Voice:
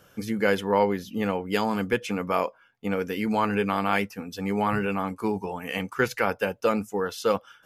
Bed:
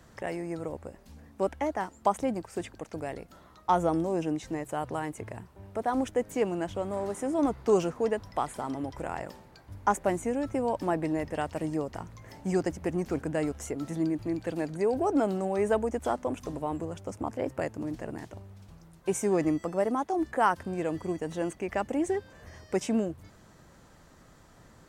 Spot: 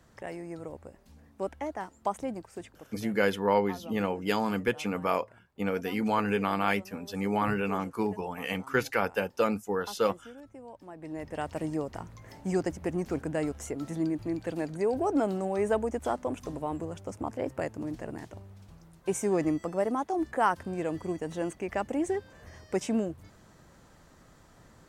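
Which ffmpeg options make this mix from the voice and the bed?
-filter_complex "[0:a]adelay=2750,volume=0.708[s0];[1:a]volume=3.98,afade=t=out:st=2.35:d=0.88:silence=0.223872,afade=t=in:st=10.95:d=0.58:silence=0.141254[s1];[s0][s1]amix=inputs=2:normalize=0"

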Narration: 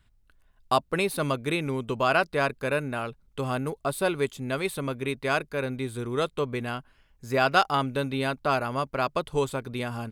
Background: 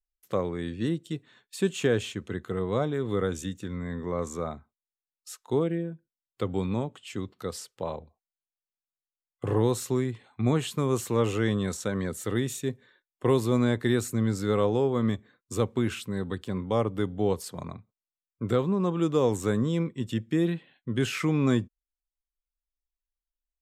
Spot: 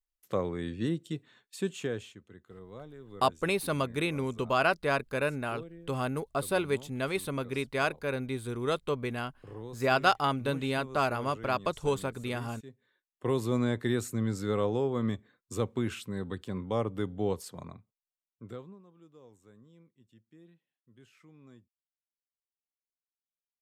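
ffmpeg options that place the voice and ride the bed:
-filter_complex "[0:a]adelay=2500,volume=0.708[s0];[1:a]volume=3.98,afade=t=out:st=1.26:d=0.97:silence=0.149624,afade=t=in:st=12.73:d=0.74:silence=0.188365,afade=t=out:st=17.3:d=1.53:silence=0.0446684[s1];[s0][s1]amix=inputs=2:normalize=0"

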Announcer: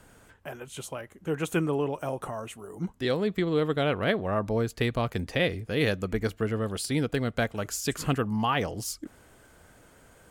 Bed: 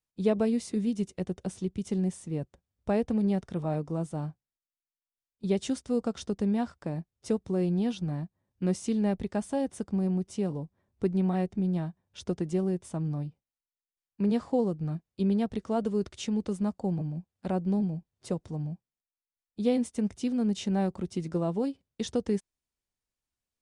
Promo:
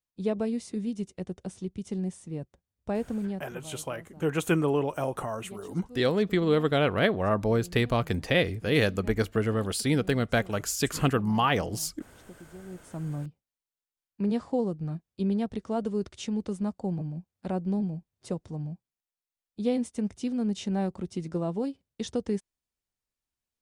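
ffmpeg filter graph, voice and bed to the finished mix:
-filter_complex "[0:a]adelay=2950,volume=1.26[s0];[1:a]volume=5.01,afade=t=out:st=3.05:d=0.69:silence=0.177828,afade=t=in:st=12.64:d=0.5:silence=0.141254[s1];[s0][s1]amix=inputs=2:normalize=0"

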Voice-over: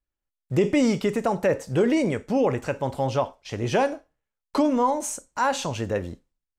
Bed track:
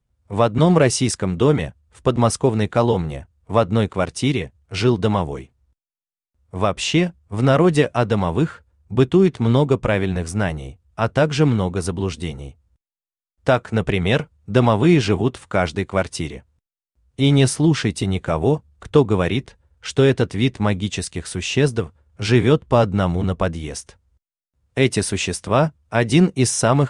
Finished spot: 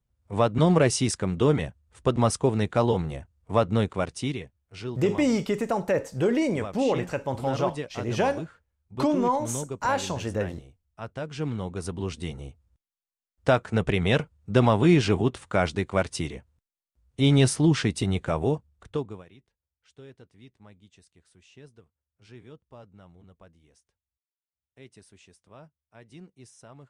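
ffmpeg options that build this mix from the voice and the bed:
-filter_complex "[0:a]adelay=4450,volume=0.75[s0];[1:a]volume=2.37,afade=t=out:st=3.88:d=0.72:silence=0.251189,afade=t=in:st=11.25:d=1.4:silence=0.223872,afade=t=out:st=18.17:d=1.08:silence=0.0398107[s1];[s0][s1]amix=inputs=2:normalize=0"

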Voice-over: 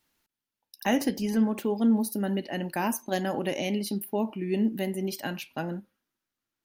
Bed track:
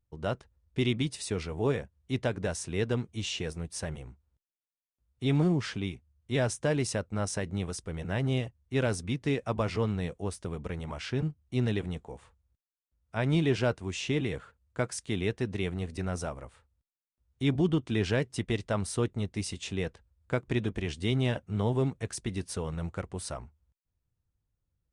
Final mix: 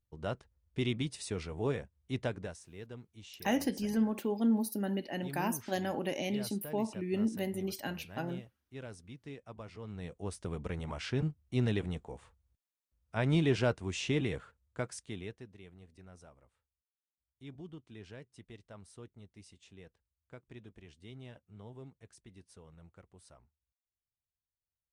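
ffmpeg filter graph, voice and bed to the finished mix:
-filter_complex "[0:a]adelay=2600,volume=0.531[s0];[1:a]volume=3.35,afade=t=out:st=2.28:d=0.32:silence=0.237137,afade=t=in:st=9.82:d=0.72:silence=0.16788,afade=t=out:st=14.27:d=1.23:silence=0.105925[s1];[s0][s1]amix=inputs=2:normalize=0"

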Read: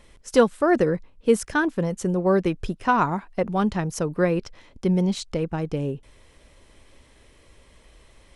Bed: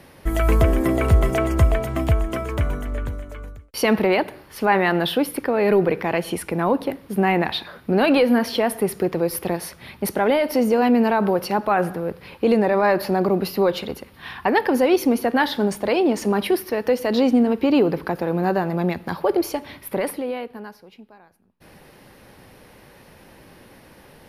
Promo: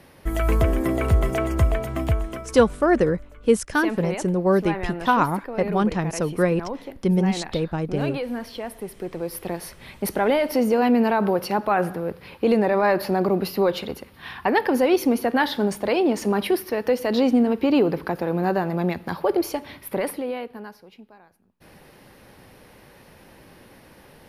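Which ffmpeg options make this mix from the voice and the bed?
-filter_complex "[0:a]adelay=2200,volume=1.12[s0];[1:a]volume=2.37,afade=t=out:st=2.11:d=0.43:silence=0.354813,afade=t=in:st=8.92:d=1.17:silence=0.298538[s1];[s0][s1]amix=inputs=2:normalize=0"

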